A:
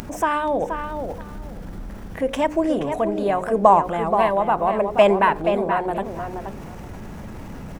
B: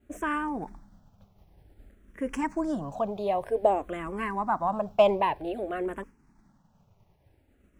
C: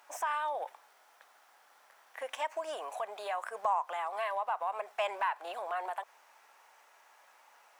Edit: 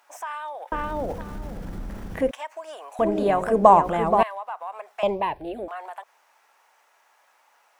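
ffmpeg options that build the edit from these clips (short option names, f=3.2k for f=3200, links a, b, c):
-filter_complex "[0:a]asplit=2[a][b];[2:a]asplit=4[c][d][e][f];[c]atrim=end=0.722[g];[a]atrim=start=0.718:end=2.312[h];[d]atrim=start=2.308:end=2.992[i];[b]atrim=start=2.988:end=4.232[j];[e]atrim=start=4.228:end=5.032[k];[1:a]atrim=start=5.028:end=5.682[l];[f]atrim=start=5.678[m];[g][h]acrossfade=d=0.004:c1=hsin:c2=hsin[n];[n][i]acrossfade=d=0.004:c1=hsin:c2=hsin[o];[o][j]acrossfade=d=0.004:c1=hsin:c2=hsin[p];[p][k]acrossfade=d=0.004:c1=hsin:c2=hsin[q];[q][l]acrossfade=d=0.004:c1=hsin:c2=hsin[r];[r][m]acrossfade=d=0.004:c1=hsin:c2=hsin"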